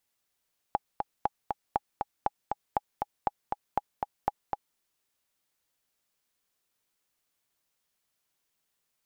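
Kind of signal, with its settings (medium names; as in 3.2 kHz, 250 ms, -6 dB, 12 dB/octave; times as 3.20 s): metronome 238 bpm, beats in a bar 2, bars 8, 825 Hz, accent 4 dB -12 dBFS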